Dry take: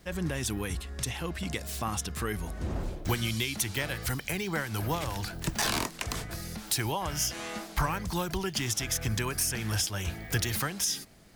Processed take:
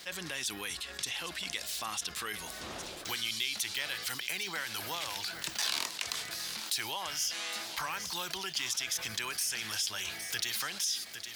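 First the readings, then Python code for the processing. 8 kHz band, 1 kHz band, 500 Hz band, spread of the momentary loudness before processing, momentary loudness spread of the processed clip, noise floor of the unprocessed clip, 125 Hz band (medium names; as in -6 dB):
-2.5 dB, -5.5 dB, -10.5 dB, 7 LU, 5 LU, -46 dBFS, -21.0 dB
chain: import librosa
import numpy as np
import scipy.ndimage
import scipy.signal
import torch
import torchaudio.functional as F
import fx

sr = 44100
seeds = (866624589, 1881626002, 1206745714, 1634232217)

p1 = fx.highpass(x, sr, hz=1300.0, slope=6)
p2 = fx.peak_eq(p1, sr, hz=3900.0, db=8.0, octaves=1.4)
p3 = p2 + fx.echo_single(p2, sr, ms=811, db=-17.5, dry=0)
p4 = fx.env_flatten(p3, sr, amount_pct=50)
y = p4 * 10.0 ** (-8.5 / 20.0)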